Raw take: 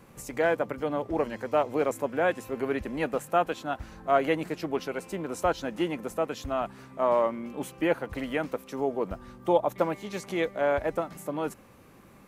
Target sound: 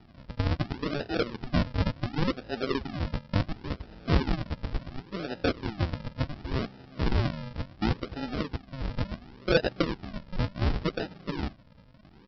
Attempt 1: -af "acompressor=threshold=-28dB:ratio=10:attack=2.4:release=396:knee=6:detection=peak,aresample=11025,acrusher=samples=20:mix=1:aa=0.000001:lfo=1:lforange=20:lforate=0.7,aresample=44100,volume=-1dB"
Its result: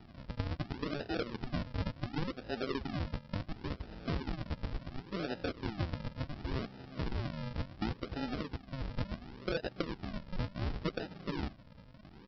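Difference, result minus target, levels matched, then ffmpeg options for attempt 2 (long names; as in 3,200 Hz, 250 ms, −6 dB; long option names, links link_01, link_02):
downward compressor: peak gain reduction +14 dB
-af "aresample=11025,acrusher=samples=20:mix=1:aa=0.000001:lfo=1:lforange=20:lforate=0.7,aresample=44100,volume=-1dB"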